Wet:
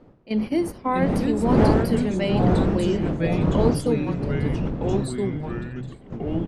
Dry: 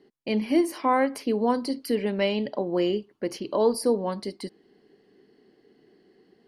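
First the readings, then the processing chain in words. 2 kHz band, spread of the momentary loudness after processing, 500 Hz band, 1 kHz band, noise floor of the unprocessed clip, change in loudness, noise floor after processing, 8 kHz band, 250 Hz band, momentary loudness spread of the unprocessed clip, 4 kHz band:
+2.0 dB, 12 LU, +2.0 dB, +1.0 dB, -64 dBFS, +3.5 dB, -47 dBFS, -0.5 dB, +6.0 dB, 10 LU, -1.0 dB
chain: wind noise 370 Hz -27 dBFS; dynamic EQ 210 Hz, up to +5 dB, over -36 dBFS, Q 2.8; on a send: echo 0.721 s -18 dB; on the sum: gate -25 dBFS, range -12 dB; echoes that change speed 0.591 s, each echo -3 st, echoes 3; gain -2 dB

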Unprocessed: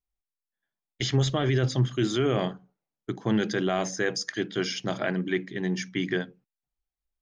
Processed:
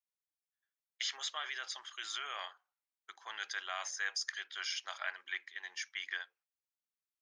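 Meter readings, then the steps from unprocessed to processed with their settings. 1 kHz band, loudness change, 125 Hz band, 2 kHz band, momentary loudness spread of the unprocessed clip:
-9.5 dB, -12.0 dB, under -40 dB, -5.5 dB, 7 LU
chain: HPF 1000 Hz 24 dB/oct; gain -5.5 dB

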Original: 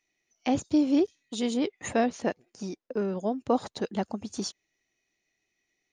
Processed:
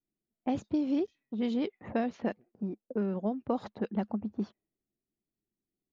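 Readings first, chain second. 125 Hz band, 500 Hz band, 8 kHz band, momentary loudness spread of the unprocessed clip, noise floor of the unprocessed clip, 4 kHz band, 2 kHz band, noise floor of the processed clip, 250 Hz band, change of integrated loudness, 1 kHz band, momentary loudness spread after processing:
-0.5 dB, -5.5 dB, under -20 dB, 10 LU, -81 dBFS, -12.0 dB, -7.5 dB, under -85 dBFS, -3.5 dB, -4.5 dB, -6.5 dB, 8 LU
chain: low-pass opened by the level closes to 320 Hz, open at -21.5 dBFS; LPF 3900 Hz 12 dB/oct; bell 210 Hz +7 dB 0.3 oct; compressor 4:1, threshold -24 dBFS, peak gain reduction 6 dB; gain -2.5 dB

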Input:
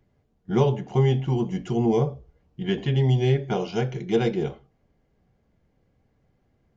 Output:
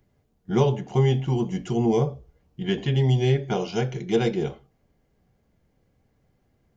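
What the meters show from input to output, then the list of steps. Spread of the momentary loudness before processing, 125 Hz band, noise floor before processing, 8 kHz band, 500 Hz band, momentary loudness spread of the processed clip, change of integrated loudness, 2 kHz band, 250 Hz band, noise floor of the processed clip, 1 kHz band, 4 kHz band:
7 LU, 0.0 dB, -68 dBFS, n/a, 0.0 dB, 7 LU, 0.0 dB, +1.0 dB, 0.0 dB, -68 dBFS, 0.0 dB, +2.0 dB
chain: high shelf 6000 Hz +8.5 dB

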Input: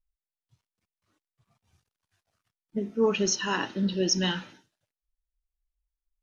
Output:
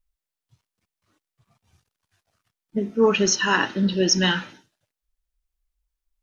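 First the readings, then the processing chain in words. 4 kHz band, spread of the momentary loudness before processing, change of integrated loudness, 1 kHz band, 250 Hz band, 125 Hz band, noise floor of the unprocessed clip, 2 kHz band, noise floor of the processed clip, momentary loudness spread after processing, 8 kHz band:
+6.5 dB, 10 LU, +6.5 dB, +7.5 dB, +5.5 dB, +5.5 dB, under -85 dBFS, +10.0 dB, under -85 dBFS, 9 LU, n/a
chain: dynamic EQ 1600 Hz, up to +5 dB, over -42 dBFS, Q 1.2; gain +5.5 dB

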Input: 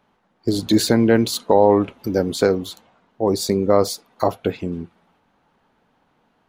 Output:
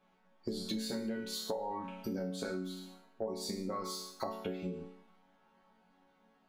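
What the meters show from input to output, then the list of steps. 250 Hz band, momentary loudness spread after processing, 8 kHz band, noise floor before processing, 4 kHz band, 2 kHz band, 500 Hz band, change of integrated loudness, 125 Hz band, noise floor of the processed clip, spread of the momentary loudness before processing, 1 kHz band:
-19.0 dB, 7 LU, -16.5 dB, -65 dBFS, -15.0 dB, -18.5 dB, -22.0 dB, -20.0 dB, -20.0 dB, -70 dBFS, 12 LU, -19.0 dB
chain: high shelf 11000 Hz -3 dB; resonator bank F#3 minor, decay 0.56 s; compressor 12:1, threshold -48 dBFS, peak gain reduction 18.5 dB; gain +13.5 dB

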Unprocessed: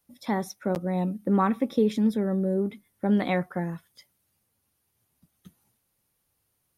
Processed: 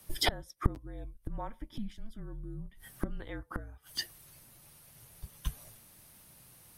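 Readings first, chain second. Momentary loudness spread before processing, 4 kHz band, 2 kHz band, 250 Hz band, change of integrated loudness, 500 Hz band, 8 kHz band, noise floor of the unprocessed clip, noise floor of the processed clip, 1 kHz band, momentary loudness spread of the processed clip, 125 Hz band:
9 LU, +7.5 dB, -5.0 dB, -18.5 dB, -13.0 dB, -17.0 dB, n/a, -75 dBFS, -60 dBFS, -11.5 dB, 19 LU, -9.0 dB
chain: flipped gate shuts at -29 dBFS, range -33 dB; frequency shift -230 Hz; gain +17.5 dB

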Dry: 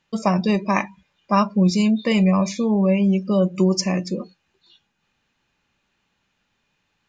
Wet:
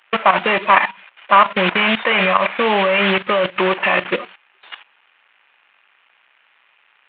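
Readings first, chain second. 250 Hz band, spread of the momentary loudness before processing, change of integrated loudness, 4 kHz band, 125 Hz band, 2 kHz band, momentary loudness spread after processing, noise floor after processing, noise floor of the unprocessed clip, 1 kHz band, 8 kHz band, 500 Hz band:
-7.0 dB, 6 LU, +4.0 dB, +10.0 dB, -9.0 dB, +15.5 dB, 5 LU, -58 dBFS, -72 dBFS, +10.5 dB, n/a, +4.5 dB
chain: CVSD 16 kbps; HPF 1000 Hz 12 dB/oct; level quantiser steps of 14 dB; maximiser +27.5 dB; gain -1 dB

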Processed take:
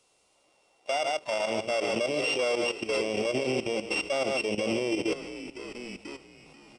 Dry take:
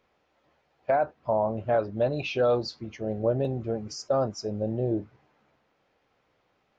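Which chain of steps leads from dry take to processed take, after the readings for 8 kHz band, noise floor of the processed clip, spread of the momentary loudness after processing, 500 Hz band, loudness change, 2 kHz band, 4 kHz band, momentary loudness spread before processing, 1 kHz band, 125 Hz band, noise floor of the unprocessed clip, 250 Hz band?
n/a, -68 dBFS, 13 LU, -2.0 dB, -0.5 dB, +9.0 dB, +8.5 dB, 8 LU, -3.0 dB, -11.5 dB, -72 dBFS, -0.5 dB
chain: sample sorter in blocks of 16 samples; wow and flutter 20 cents; frequency-shifting echo 0.487 s, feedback 57%, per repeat -65 Hz, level -17 dB; in parallel at -6 dB: one-sided clip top -28.5 dBFS, bottom -16 dBFS; on the sum: AGC gain up to 15 dB; three-band isolator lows -21 dB, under 270 Hz, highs -12 dB, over 6500 Hz; on a send: echo 0.136 s -12.5 dB; on the sum: added noise white -63 dBFS; level quantiser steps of 13 dB; bell 1700 Hz -14 dB 0.34 oct; downsampling 22050 Hz; limiter -17.5 dBFS, peak gain reduction 16.5 dB

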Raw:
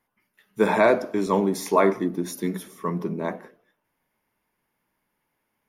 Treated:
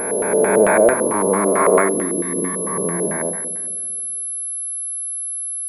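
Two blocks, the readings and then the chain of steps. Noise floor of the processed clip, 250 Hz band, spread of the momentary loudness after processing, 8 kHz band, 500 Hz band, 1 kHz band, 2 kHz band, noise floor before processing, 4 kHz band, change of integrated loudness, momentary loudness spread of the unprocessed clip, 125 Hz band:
-26 dBFS, +3.5 dB, 9 LU, +22.5 dB, +7.5 dB, +5.5 dB, +6.5 dB, -77 dBFS, n/a, +5.5 dB, 12 LU, +2.5 dB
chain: spectral swells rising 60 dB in 2.73 s; on a send: split-band echo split 580 Hz, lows 0.196 s, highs 96 ms, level -12 dB; on the sum: LFO low-pass square 4.5 Hz 520–1800 Hz; pulse-width modulation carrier 11000 Hz; gain -2.5 dB

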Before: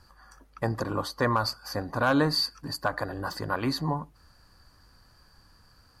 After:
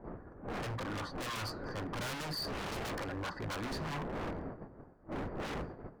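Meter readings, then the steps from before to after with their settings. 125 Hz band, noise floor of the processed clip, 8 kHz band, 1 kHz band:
-8.5 dB, -56 dBFS, -5.0 dB, -10.0 dB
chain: wind noise 430 Hz -32 dBFS; gate -40 dBFS, range -9 dB; notches 60/120/180/240 Hz; low-pass opened by the level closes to 1400 Hz, open at -21 dBFS; resonant high shelf 2400 Hz -7.5 dB, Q 1.5; hard clip -25.5 dBFS, distortion -7 dB; flange 0.93 Hz, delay 3.2 ms, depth 4.8 ms, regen -89%; wavefolder -35 dBFS; gain +2 dB

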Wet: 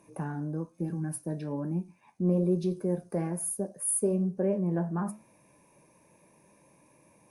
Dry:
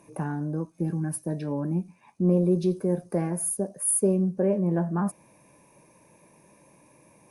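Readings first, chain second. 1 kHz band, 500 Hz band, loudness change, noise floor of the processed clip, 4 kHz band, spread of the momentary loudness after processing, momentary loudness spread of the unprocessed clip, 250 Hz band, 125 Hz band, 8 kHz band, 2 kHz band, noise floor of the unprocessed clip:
-4.5 dB, -4.5 dB, -4.5 dB, -63 dBFS, n/a, 9 LU, 9 LU, -4.0 dB, -4.0 dB, -4.5 dB, -4.5 dB, -59 dBFS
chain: flange 1.1 Hz, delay 9.3 ms, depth 3.8 ms, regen -76%

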